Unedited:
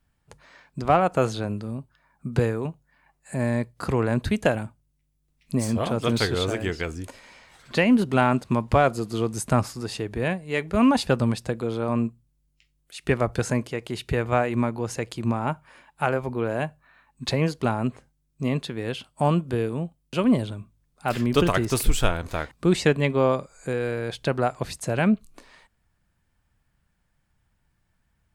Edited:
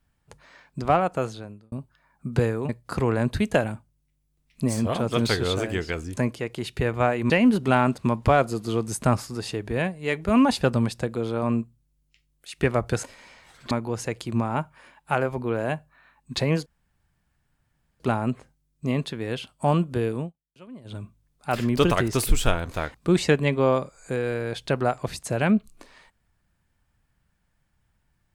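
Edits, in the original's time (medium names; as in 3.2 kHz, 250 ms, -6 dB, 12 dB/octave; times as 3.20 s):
0.82–1.72 s: fade out
2.69–3.60 s: delete
7.08–7.76 s: swap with 13.49–14.62 s
17.57 s: insert room tone 1.34 s
19.77–20.54 s: dip -23 dB, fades 0.13 s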